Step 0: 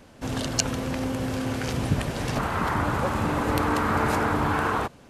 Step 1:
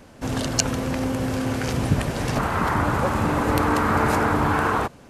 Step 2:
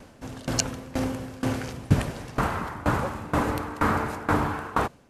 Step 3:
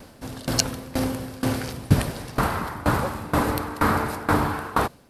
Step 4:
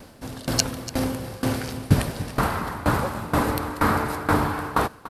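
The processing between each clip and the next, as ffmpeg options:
-af "equalizer=f=3.4k:w=1.5:g=-2.5,volume=3.5dB"
-af "aeval=exprs='val(0)*pow(10,-21*if(lt(mod(2.1*n/s,1),2*abs(2.1)/1000),1-mod(2.1*n/s,1)/(2*abs(2.1)/1000),(mod(2.1*n/s,1)-2*abs(2.1)/1000)/(1-2*abs(2.1)/1000))/20)':c=same,volume=1.5dB"
-af "aexciter=amount=1.8:drive=3.3:freq=3.8k,volume=2.5dB"
-af "aecho=1:1:290:0.178"

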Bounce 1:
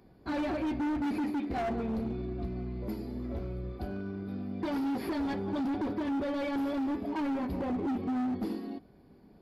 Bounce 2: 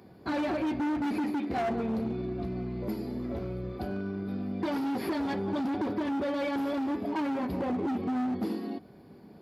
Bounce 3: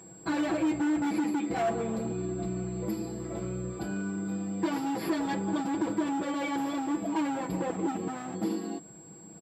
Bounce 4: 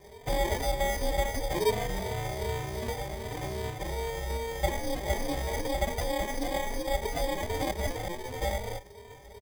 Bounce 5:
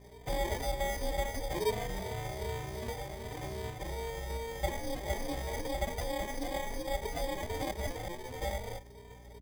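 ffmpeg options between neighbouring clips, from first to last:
-filter_complex "[0:a]highpass=100,equalizer=f=270:w=6.5:g=-3,asplit=2[a][b];[b]acompressor=threshold=-41dB:ratio=6,volume=2dB[c];[a][c]amix=inputs=2:normalize=0"
-af "aecho=1:1:6.1:0.87,aeval=exprs='val(0)+0.00355*sin(2*PI*7600*n/s)':c=same,volume=-1.5dB"
-filter_complex "[0:a]aeval=exprs='val(0)*sin(2*PI*260*n/s)':c=same,acrusher=samples=32:mix=1:aa=0.000001,asplit=2[a][b];[b]adelay=3.3,afreqshift=2.6[c];[a][c]amix=inputs=2:normalize=1,volume=6dB"
-af "aeval=exprs='val(0)+0.00398*(sin(2*PI*60*n/s)+sin(2*PI*2*60*n/s)/2+sin(2*PI*3*60*n/s)/3+sin(2*PI*4*60*n/s)/4+sin(2*PI*5*60*n/s)/5)':c=same,volume=-5dB"

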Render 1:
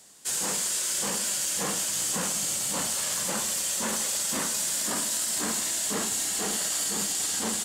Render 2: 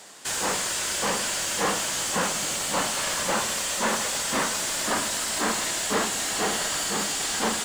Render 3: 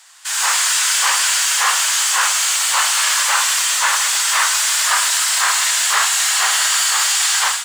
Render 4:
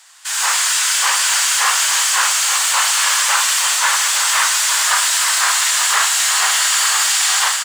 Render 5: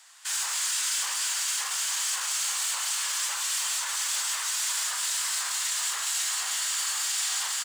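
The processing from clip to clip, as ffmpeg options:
-filter_complex "[0:a]acrusher=bits=3:mode=log:mix=0:aa=0.000001,asplit=2[a][b];[b]highpass=f=720:p=1,volume=17dB,asoftclip=type=tanh:threshold=-16dB[c];[a][c]amix=inputs=2:normalize=0,lowpass=f=1.7k:p=1,volume=-6dB,volume=5dB"
-af "highpass=f=1k:w=0.5412,highpass=f=1k:w=1.3066,dynaudnorm=f=220:g=3:m=12.5dB"
-af "aecho=1:1:878:0.447"
-filter_complex "[0:a]alimiter=limit=-12dB:level=0:latency=1:release=44,acrossover=split=310|3000[a][b][c];[b]acompressor=threshold=-34dB:ratio=2[d];[a][d][c]amix=inputs=3:normalize=0,volume=-7.5dB"

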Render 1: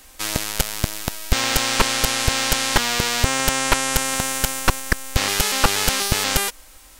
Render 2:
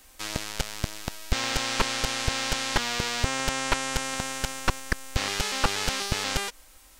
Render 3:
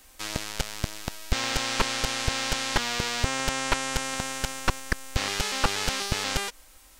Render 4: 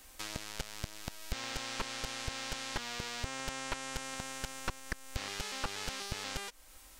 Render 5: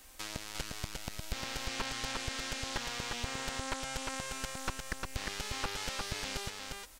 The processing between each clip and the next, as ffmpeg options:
-filter_complex "[0:a]acrossover=split=7800[a][b];[b]acompressor=threshold=-35dB:ratio=4:attack=1:release=60[c];[a][c]amix=inputs=2:normalize=0,volume=-7dB"
-af anull
-af "acompressor=threshold=-39dB:ratio=2,volume=-2dB"
-af "aecho=1:1:353:0.668"

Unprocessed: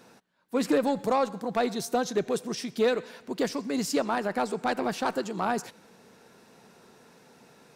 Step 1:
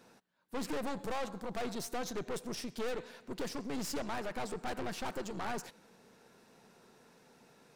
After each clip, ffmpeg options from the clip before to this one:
-af "aeval=exprs='(tanh(44.7*val(0)+0.75)-tanh(0.75))/44.7':c=same,volume=-2dB"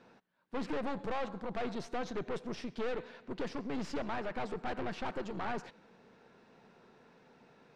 -af "lowpass=3.3k,volume=1dB"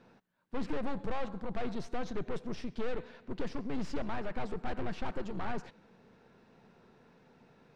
-af "lowshelf=f=150:g=11,volume=-2dB"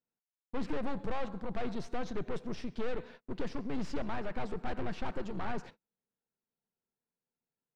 -af "agate=range=-36dB:threshold=-49dB:ratio=16:detection=peak"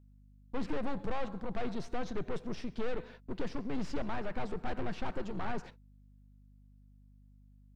-af "aeval=exprs='val(0)+0.00126*(sin(2*PI*50*n/s)+sin(2*PI*2*50*n/s)/2+sin(2*PI*3*50*n/s)/3+sin(2*PI*4*50*n/s)/4+sin(2*PI*5*50*n/s)/5)':c=same"

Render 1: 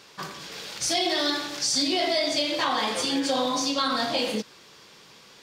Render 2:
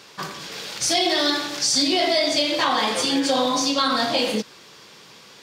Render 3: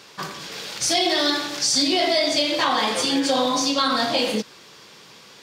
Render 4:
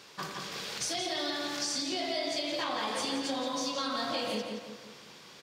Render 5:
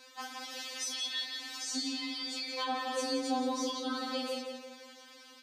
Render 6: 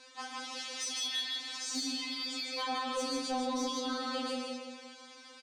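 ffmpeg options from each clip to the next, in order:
-af "highpass=66,volume=4.5dB"
-af anull
-filter_complex "[0:a]acompressor=threshold=-26dB:ratio=4,asplit=2[a][b];[b]adelay=172,lowpass=f=3.7k:p=1,volume=-3.5dB,asplit=2[c][d];[d]adelay=172,lowpass=f=3.7k:p=1,volume=0.45,asplit=2[e][f];[f]adelay=172,lowpass=f=3.7k:p=1,volume=0.45,asplit=2[g][h];[h]adelay=172,lowpass=f=3.7k:p=1,volume=0.45,asplit=2[i][j];[j]adelay=172,lowpass=f=3.7k:p=1,volume=0.45,asplit=2[k][l];[l]adelay=172,lowpass=f=3.7k:p=1,volume=0.45[m];[c][e][g][i][k][m]amix=inputs=6:normalize=0[n];[a][n]amix=inputs=2:normalize=0,volume=-6.5dB"
-af "afftfilt=real='re*3.46*eq(mod(b,12),0)':imag='im*3.46*eq(mod(b,12),0)':win_size=2048:overlap=0.75"
-af "aresample=22050,aresample=44100,aecho=1:1:148:0.631,asoftclip=type=tanh:threshold=-26dB"

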